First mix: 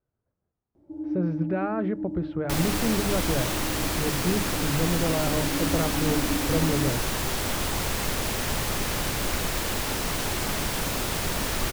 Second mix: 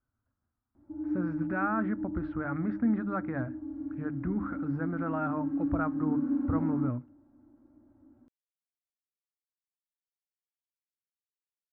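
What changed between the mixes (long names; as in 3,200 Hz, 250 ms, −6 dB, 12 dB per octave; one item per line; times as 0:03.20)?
second sound: muted
master: add drawn EQ curve 110 Hz 0 dB, 170 Hz −10 dB, 250 Hz +5 dB, 420 Hz −14 dB, 1,400 Hz +6 dB, 3,200 Hz −14 dB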